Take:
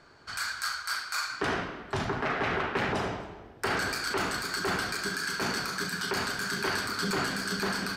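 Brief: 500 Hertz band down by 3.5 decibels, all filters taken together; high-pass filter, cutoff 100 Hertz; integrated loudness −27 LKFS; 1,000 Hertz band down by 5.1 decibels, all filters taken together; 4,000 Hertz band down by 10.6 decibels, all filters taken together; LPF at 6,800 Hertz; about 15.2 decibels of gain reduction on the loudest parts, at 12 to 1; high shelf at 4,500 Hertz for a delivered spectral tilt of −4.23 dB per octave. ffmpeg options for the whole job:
ffmpeg -i in.wav -af "highpass=100,lowpass=6800,equalizer=frequency=500:width_type=o:gain=-3.5,equalizer=frequency=1000:width_type=o:gain=-5,equalizer=frequency=4000:width_type=o:gain=-8.5,highshelf=frequency=4500:gain=-6.5,acompressor=threshold=-45dB:ratio=12,volume=21dB" out.wav

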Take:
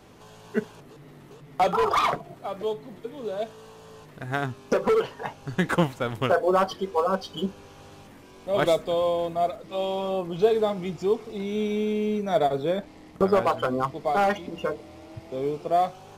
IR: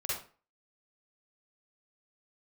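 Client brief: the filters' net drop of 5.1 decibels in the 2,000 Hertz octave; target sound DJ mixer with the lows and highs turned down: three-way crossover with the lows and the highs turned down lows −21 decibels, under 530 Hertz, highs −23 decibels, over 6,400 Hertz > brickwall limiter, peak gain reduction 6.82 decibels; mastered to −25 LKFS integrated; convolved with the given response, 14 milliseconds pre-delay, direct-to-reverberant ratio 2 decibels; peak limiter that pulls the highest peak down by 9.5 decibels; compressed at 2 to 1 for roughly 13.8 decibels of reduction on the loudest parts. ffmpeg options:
-filter_complex "[0:a]equalizer=frequency=2000:width_type=o:gain=-7,acompressor=threshold=-43dB:ratio=2,alimiter=level_in=6.5dB:limit=-24dB:level=0:latency=1,volume=-6.5dB,asplit=2[link_01][link_02];[1:a]atrim=start_sample=2205,adelay=14[link_03];[link_02][link_03]afir=irnorm=-1:irlink=0,volume=-6dB[link_04];[link_01][link_04]amix=inputs=2:normalize=0,acrossover=split=530 6400:gain=0.0891 1 0.0708[link_05][link_06][link_07];[link_05][link_06][link_07]amix=inputs=3:normalize=0,volume=20dB,alimiter=limit=-14dB:level=0:latency=1"

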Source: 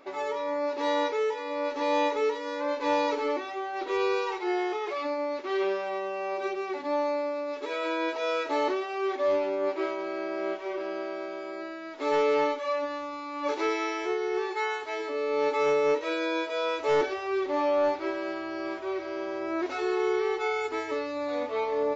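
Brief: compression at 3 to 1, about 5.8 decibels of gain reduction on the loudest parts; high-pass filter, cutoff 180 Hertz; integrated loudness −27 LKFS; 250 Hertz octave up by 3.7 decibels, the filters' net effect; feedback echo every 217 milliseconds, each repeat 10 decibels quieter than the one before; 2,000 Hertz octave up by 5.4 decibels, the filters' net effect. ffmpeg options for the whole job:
ffmpeg -i in.wav -af "highpass=180,equalizer=frequency=250:width_type=o:gain=6,equalizer=frequency=2000:width_type=o:gain=6.5,acompressor=threshold=-27dB:ratio=3,aecho=1:1:217|434|651|868:0.316|0.101|0.0324|0.0104,volume=3dB" out.wav

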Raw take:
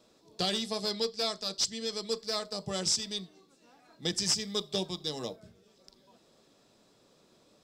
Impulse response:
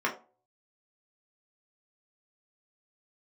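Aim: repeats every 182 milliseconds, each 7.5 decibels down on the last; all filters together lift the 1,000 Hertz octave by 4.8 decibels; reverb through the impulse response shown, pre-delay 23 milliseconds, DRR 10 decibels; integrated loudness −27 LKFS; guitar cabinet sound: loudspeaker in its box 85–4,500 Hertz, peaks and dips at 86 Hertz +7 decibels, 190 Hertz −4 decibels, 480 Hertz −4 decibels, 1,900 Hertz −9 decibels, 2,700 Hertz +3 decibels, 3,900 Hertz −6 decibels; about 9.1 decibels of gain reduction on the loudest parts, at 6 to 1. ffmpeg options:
-filter_complex "[0:a]equalizer=frequency=1000:width_type=o:gain=7.5,acompressor=threshold=-34dB:ratio=6,aecho=1:1:182|364|546|728|910:0.422|0.177|0.0744|0.0312|0.0131,asplit=2[link_01][link_02];[1:a]atrim=start_sample=2205,adelay=23[link_03];[link_02][link_03]afir=irnorm=-1:irlink=0,volume=-20.5dB[link_04];[link_01][link_04]amix=inputs=2:normalize=0,highpass=85,equalizer=frequency=86:width_type=q:width=4:gain=7,equalizer=frequency=190:width_type=q:width=4:gain=-4,equalizer=frequency=480:width_type=q:width=4:gain=-4,equalizer=frequency=1900:width_type=q:width=4:gain=-9,equalizer=frequency=2700:width_type=q:width=4:gain=3,equalizer=frequency=3900:width_type=q:width=4:gain=-6,lowpass=frequency=4500:width=0.5412,lowpass=frequency=4500:width=1.3066,volume=14.5dB"

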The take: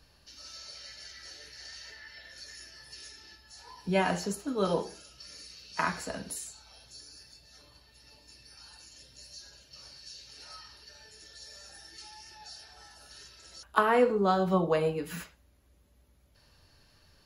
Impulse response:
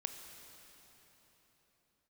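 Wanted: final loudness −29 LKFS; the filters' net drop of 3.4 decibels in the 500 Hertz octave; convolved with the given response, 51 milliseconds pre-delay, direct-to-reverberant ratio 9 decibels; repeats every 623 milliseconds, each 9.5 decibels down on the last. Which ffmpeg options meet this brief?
-filter_complex "[0:a]equalizer=frequency=500:width_type=o:gain=-4,aecho=1:1:623|1246|1869|2492:0.335|0.111|0.0365|0.012,asplit=2[link_01][link_02];[1:a]atrim=start_sample=2205,adelay=51[link_03];[link_02][link_03]afir=irnorm=-1:irlink=0,volume=-8dB[link_04];[link_01][link_04]amix=inputs=2:normalize=0,volume=5dB"

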